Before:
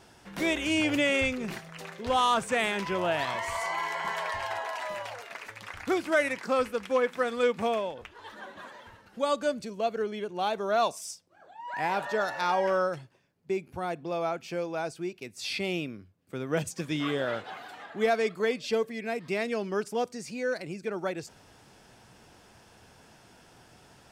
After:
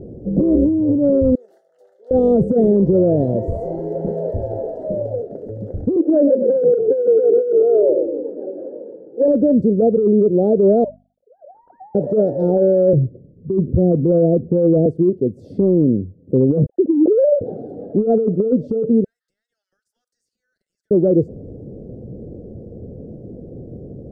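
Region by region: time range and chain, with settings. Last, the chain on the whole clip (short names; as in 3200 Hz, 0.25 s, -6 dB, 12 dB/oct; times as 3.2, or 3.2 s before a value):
1.35–2.11 HPF 1100 Hz 24 dB/oct + doubler 20 ms -11.5 dB
5.96–9.28 Chebyshev band-pass 300–1800 Hz, order 5 + frequency-shifting echo 0.14 s, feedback 46%, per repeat -40 Hz, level -10 dB
10.84–11.95 sine-wave speech + notches 50/100/150/200/250 Hz + compressor 4:1, threshold -34 dBFS
12.93–14.86 steep low-pass 750 Hz 72 dB/oct + low shelf 170 Hz +9.5 dB
16.66–17.41 sine-wave speech + air absorption 390 m
19.04–20.91 steep high-pass 1400 Hz 48 dB/oct + compressor, threshold -47 dBFS
whole clip: elliptic low-pass 520 Hz, stop band 50 dB; negative-ratio compressor -35 dBFS, ratio -1; maximiser +28 dB; gain -5.5 dB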